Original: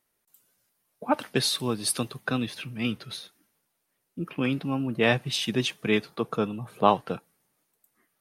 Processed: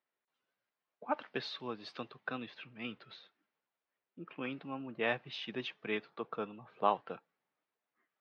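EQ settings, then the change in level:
Gaussian smoothing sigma 2.6 samples
high-pass filter 650 Hz 6 dB per octave
−6.5 dB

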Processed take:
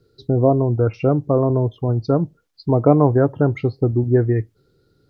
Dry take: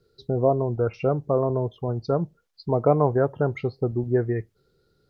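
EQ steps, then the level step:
parametric band 110 Hz +6.5 dB 0.92 octaves
parametric band 290 Hz +9 dB 0.39 octaves
+3.0 dB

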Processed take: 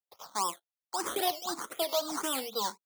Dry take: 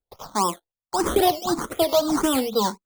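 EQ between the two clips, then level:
high-pass filter 1,100 Hz 6 dB per octave
−5.5 dB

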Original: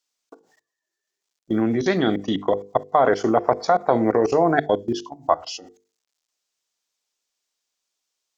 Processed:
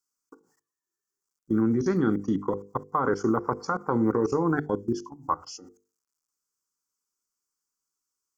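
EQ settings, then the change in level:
flat-topped bell 2,300 Hz −15 dB 1.1 octaves
phaser with its sweep stopped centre 1,600 Hz, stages 4
0.0 dB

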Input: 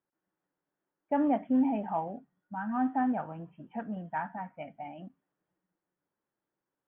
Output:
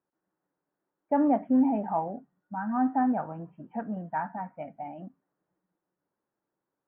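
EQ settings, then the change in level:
low-pass filter 1,600 Hz 12 dB per octave
high-frequency loss of the air 66 metres
low-shelf EQ 86 Hz −6 dB
+4.0 dB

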